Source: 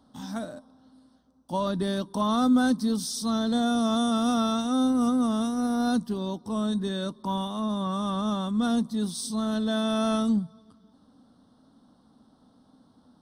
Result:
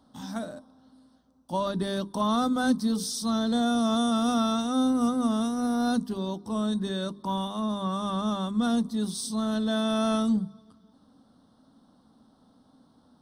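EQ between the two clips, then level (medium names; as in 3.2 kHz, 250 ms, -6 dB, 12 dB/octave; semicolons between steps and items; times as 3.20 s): hum notches 50/100/150/200/250/300/350/400/450 Hz; 0.0 dB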